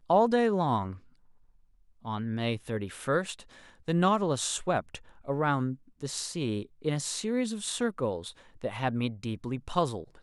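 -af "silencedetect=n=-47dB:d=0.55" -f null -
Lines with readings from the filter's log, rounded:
silence_start: 0.99
silence_end: 2.05 | silence_duration: 1.06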